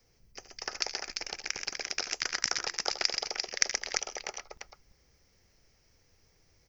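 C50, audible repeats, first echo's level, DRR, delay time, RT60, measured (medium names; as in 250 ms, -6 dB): no reverb, 3, -13.0 dB, no reverb, 73 ms, no reverb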